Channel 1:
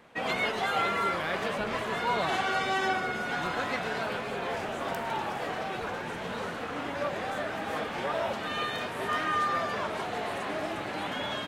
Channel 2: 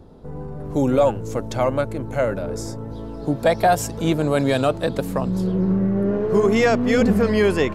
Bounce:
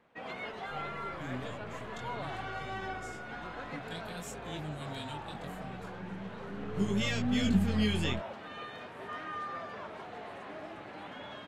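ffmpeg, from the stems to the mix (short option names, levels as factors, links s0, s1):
-filter_complex "[0:a]lowpass=f=2900:p=1,volume=0.299[s0];[1:a]firequalizer=gain_entry='entry(180,0);entry(550,-21);entry(3200,7);entry(5000,-4);entry(7300,2);entry(11000,-3)':delay=0.05:min_phase=1,flanger=delay=19.5:depth=4.9:speed=0.45,adelay=450,volume=0.596,afade=t=in:st=6.46:d=0.36:silence=0.316228[s1];[s0][s1]amix=inputs=2:normalize=0"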